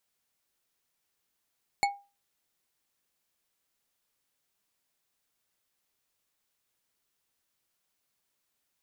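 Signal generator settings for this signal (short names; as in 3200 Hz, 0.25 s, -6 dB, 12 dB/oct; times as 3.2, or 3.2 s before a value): glass hit bar, lowest mode 804 Hz, decay 0.30 s, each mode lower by 3.5 dB, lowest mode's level -20 dB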